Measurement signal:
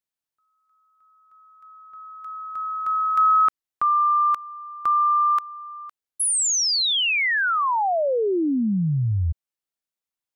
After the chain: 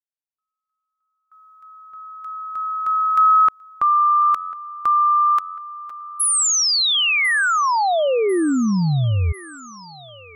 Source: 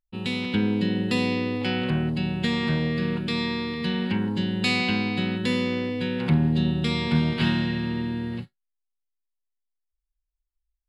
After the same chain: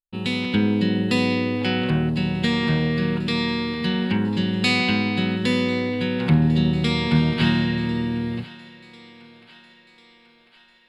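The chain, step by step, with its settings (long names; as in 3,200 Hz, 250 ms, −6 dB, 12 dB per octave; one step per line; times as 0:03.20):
feedback echo with a high-pass in the loop 1,046 ms, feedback 59%, high-pass 460 Hz, level −18 dB
noise gate with hold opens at −52 dBFS, range −20 dB
level +3.5 dB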